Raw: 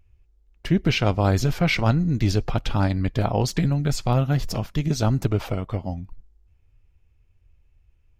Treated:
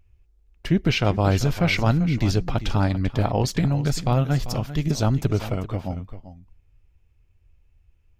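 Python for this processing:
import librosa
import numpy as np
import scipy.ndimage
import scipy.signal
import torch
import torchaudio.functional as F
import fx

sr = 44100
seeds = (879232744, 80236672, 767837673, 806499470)

y = x + 10.0 ** (-13.5 / 20.0) * np.pad(x, (int(392 * sr / 1000.0), 0))[:len(x)]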